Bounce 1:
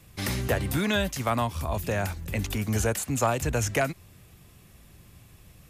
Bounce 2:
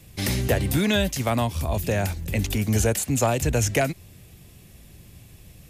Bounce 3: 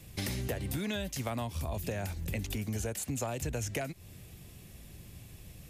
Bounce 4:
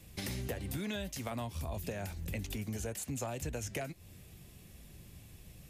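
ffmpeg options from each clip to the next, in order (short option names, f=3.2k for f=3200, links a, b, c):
-af "equalizer=f=1.2k:t=o:w=1:g=-8,volume=5dB"
-af "acompressor=threshold=-30dB:ratio=6,volume=-2.5dB"
-af "flanger=delay=3.5:depth=2.3:regen=-80:speed=1.7:shape=triangular,volume=1dB"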